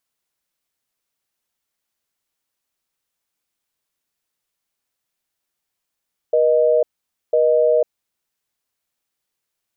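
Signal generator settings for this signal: call progress tone busy tone, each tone -15 dBFS 1.55 s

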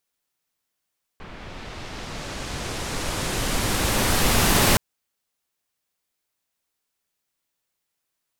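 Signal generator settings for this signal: swept filtered noise pink, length 3.57 s lowpass, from 2300 Hz, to 16000 Hz, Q 0.82, linear, gain ramp +22.5 dB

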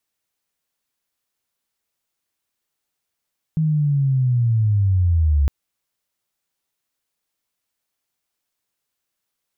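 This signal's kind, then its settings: chirp linear 160 Hz -> 68 Hz -15.5 dBFS -> -13 dBFS 1.91 s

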